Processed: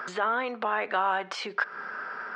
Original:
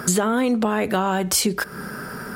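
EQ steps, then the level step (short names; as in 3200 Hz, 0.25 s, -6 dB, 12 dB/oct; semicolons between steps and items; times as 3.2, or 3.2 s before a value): HPF 1100 Hz 12 dB/oct; air absorption 100 m; tape spacing loss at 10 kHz 36 dB; +6.5 dB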